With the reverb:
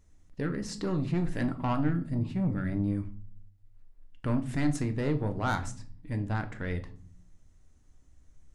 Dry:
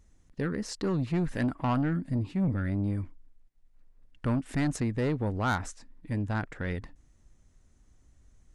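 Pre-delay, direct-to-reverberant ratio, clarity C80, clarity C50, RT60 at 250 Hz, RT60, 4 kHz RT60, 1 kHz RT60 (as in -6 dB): 3 ms, 7.0 dB, 20.0 dB, 15.0 dB, 0.90 s, 0.45 s, 0.35 s, 0.40 s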